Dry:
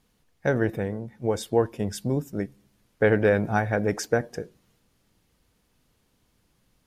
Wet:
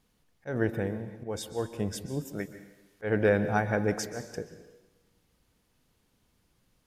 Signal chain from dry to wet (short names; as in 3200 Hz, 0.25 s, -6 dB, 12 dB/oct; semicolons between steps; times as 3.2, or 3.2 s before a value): 2.25–3.04 tilt shelf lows -5.5 dB, about 680 Hz; auto swell 0.158 s; plate-style reverb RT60 1 s, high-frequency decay 1×, pre-delay 0.115 s, DRR 11 dB; gain -3 dB